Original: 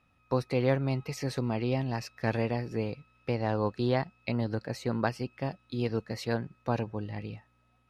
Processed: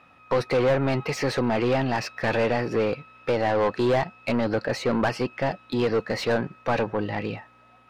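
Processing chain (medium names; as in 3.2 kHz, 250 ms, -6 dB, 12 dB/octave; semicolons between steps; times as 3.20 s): overdrive pedal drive 27 dB, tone 1.5 kHz, clips at -12.5 dBFS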